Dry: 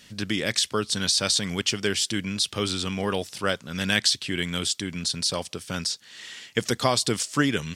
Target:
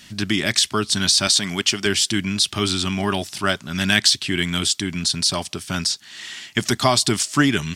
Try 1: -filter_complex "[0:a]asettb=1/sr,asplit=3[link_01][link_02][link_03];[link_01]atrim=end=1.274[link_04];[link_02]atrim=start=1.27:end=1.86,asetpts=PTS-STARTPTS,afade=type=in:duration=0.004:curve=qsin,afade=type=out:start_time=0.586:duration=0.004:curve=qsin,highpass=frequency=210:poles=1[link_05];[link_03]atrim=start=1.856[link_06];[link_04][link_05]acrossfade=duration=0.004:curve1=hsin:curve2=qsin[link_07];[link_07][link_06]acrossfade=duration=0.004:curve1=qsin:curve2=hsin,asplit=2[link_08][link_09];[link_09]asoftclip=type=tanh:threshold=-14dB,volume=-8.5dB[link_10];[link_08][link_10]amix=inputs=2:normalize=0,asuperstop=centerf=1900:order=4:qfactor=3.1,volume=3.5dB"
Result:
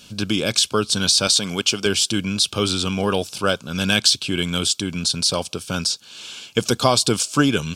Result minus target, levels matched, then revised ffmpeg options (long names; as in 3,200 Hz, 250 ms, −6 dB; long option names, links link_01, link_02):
500 Hz band +3.5 dB
-filter_complex "[0:a]asettb=1/sr,asplit=3[link_01][link_02][link_03];[link_01]atrim=end=1.274[link_04];[link_02]atrim=start=1.27:end=1.86,asetpts=PTS-STARTPTS,afade=type=in:duration=0.004:curve=qsin,afade=type=out:start_time=0.586:duration=0.004:curve=qsin,highpass=frequency=210:poles=1[link_05];[link_03]atrim=start=1.856[link_06];[link_04][link_05]acrossfade=duration=0.004:curve1=hsin:curve2=qsin[link_07];[link_07][link_06]acrossfade=duration=0.004:curve1=qsin:curve2=hsin,asplit=2[link_08][link_09];[link_09]asoftclip=type=tanh:threshold=-14dB,volume=-8.5dB[link_10];[link_08][link_10]amix=inputs=2:normalize=0,asuperstop=centerf=490:order=4:qfactor=3.1,volume=3.5dB"